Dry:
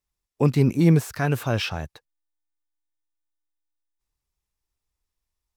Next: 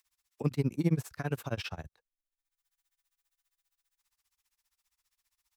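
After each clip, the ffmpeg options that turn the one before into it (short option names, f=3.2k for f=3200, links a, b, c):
-filter_complex "[0:a]acrossover=split=130|940[a][b][c];[c]acompressor=mode=upward:threshold=-51dB:ratio=2.5[d];[a][b][d]amix=inputs=3:normalize=0,tremolo=f=15:d=0.97,volume=-7.5dB"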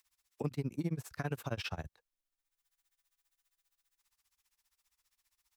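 -af "acompressor=threshold=-33dB:ratio=6,volume=1dB"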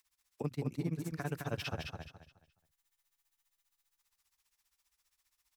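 -af "aecho=1:1:211|422|633|844:0.596|0.167|0.0467|0.0131,volume=-1dB"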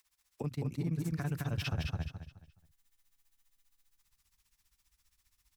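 -af "asubboost=boost=5.5:cutoff=240,alimiter=level_in=5.5dB:limit=-24dB:level=0:latency=1:release=23,volume=-5.5dB,volume=3dB"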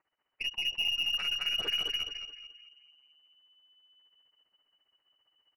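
-filter_complex "[0:a]asplit=2[a][b];[b]adelay=218,lowpass=f=1.2k:p=1,volume=-8dB,asplit=2[c][d];[d]adelay=218,lowpass=f=1.2k:p=1,volume=0.48,asplit=2[e][f];[f]adelay=218,lowpass=f=1.2k:p=1,volume=0.48,asplit=2[g][h];[h]adelay=218,lowpass=f=1.2k:p=1,volume=0.48,asplit=2[i][j];[j]adelay=218,lowpass=f=1.2k:p=1,volume=0.48,asplit=2[k][l];[l]adelay=218,lowpass=f=1.2k:p=1,volume=0.48[m];[a][c][e][g][i][k][m]amix=inputs=7:normalize=0,lowpass=f=2.6k:t=q:w=0.5098,lowpass=f=2.6k:t=q:w=0.6013,lowpass=f=2.6k:t=q:w=0.9,lowpass=f=2.6k:t=q:w=2.563,afreqshift=-3000,aeval=exprs='0.075*(cos(1*acos(clip(val(0)/0.075,-1,1)))-cos(1*PI/2))+0.00299*(cos(8*acos(clip(val(0)/0.075,-1,1)))-cos(8*PI/2))':c=same,volume=1.5dB"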